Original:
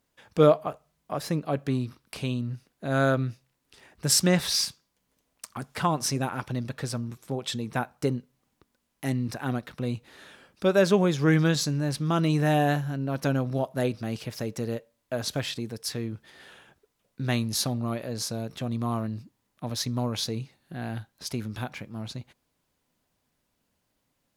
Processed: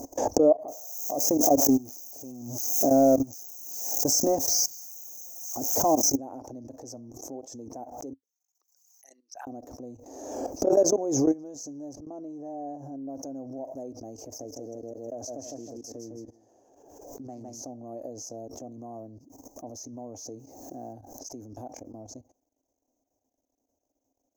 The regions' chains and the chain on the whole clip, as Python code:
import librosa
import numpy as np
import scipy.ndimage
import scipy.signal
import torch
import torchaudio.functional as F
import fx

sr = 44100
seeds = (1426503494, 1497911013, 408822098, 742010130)

y = fx.chain(x, sr, fx.crossing_spikes(level_db=-23.0),
    fx.leveller(passes=2), at=(0.68, 6.17))
y = fx.chain(y, sr, fx.envelope_sharpen(power=2.0),
    fx.bessel_highpass(hz=2900.0, order=4), at=(8.13, 9.47))
y = fx.chain(y, sr, fx.high_shelf(hz=3600.0, db=-11.5),
    fx.auto_swell(attack_ms=238.0), at=(11.93, 13.09))
y = fx.chain(y, sr, fx.echo_feedback(ms=158, feedback_pct=24, wet_db=-5.0),
    fx.doppler_dist(depth_ms=0.31), at=(14.24, 17.62))
y = fx.chain(y, sr, fx.quant_companded(bits=6),
    fx.env_flatten(amount_pct=70), at=(20.39, 20.93))
y = fx.level_steps(y, sr, step_db=19)
y = fx.curve_eq(y, sr, hz=(100.0, 180.0, 270.0, 410.0, 720.0, 1400.0, 3700.0, 6300.0, 9300.0, 14000.0), db=(0, -15, 13, 7, 13, -20, -27, 14, -18, 4))
y = fx.pre_swell(y, sr, db_per_s=42.0)
y = y * 10.0 ** (-8.0 / 20.0)